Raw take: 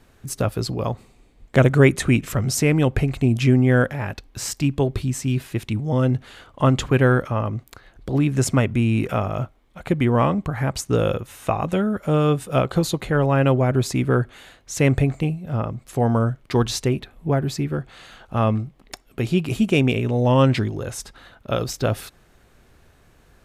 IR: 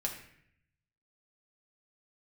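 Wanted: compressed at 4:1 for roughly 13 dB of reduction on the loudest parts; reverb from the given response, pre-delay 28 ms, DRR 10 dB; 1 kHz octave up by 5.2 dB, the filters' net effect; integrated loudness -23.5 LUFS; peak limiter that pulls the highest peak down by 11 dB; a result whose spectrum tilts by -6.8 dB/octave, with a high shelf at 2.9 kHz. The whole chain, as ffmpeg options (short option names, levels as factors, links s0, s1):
-filter_complex "[0:a]equalizer=f=1000:t=o:g=8,highshelf=f=2900:g=-9,acompressor=threshold=0.0562:ratio=4,alimiter=limit=0.0891:level=0:latency=1,asplit=2[s0][s1];[1:a]atrim=start_sample=2205,adelay=28[s2];[s1][s2]afir=irnorm=-1:irlink=0,volume=0.251[s3];[s0][s3]amix=inputs=2:normalize=0,volume=2.51"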